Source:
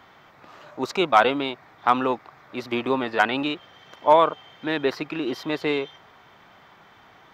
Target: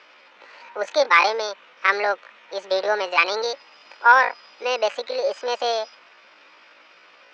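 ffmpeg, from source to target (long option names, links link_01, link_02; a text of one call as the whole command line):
ffmpeg -i in.wav -af "asetrate=70004,aresample=44100,atempo=0.629961,highpass=frequency=240:width=0.5412,highpass=frequency=240:width=1.3066,equalizer=frequency=240:width_type=q:width=4:gain=-6,equalizer=frequency=550:width_type=q:width=4:gain=9,equalizer=frequency=900:width_type=q:width=4:gain=6,equalizer=frequency=1400:width_type=q:width=4:gain=4,equalizer=frequency=2500:width_type=q:width=4:gain=8,equalizer=frequency=4400:width_type=q:width=4:gain=5,lowpass=frequency=5800:width=0.5412,lowpass=frequency=5800:width=1.3066,volume=-2.5dB" out.wav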